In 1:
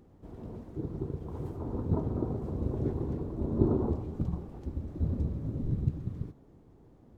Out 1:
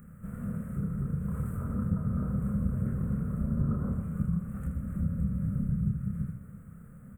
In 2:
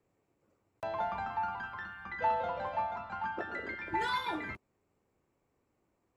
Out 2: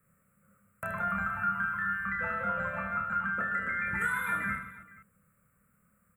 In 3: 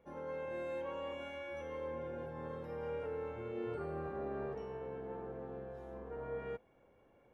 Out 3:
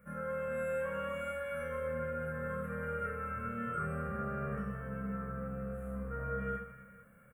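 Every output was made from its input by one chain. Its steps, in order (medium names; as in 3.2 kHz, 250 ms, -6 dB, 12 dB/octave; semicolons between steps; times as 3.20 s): FFT filter 110 Hz 0 dB, 200 Hz +9 dB, 330 Hz -22 dB, 530 Hz -4 dB, 880 Hz -19 dB, 1.3 kHz +11 dB, 2.5 kHz -4 dB, 5.1 kHz -30 dB, 8.3 kHz +12 dB; compression 2.5:1, threshold -37 dBFS; reverse bouncing-ball echo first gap 30 ms, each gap 1.6×, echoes 5; trim +5.5 dB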